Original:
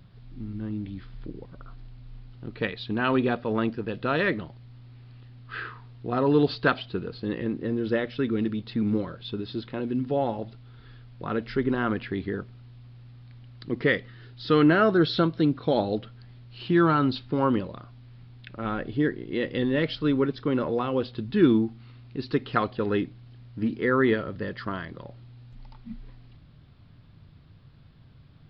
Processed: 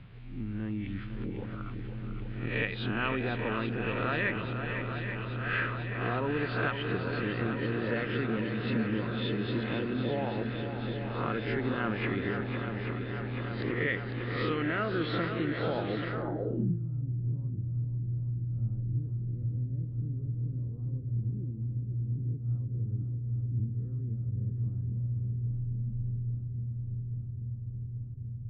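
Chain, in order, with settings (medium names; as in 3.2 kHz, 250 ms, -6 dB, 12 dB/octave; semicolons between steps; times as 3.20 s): reverse spectral sustain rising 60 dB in 0.47 s; compression 5:1, threshold -31 dBFS, peak gain reduction 16 dB; shuffle delay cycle 833 ms, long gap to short 1.5:1, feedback 75%, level -8 dB; low-pass sweep 2.5 kHz -> 110 Hz, 16.09–16.78 s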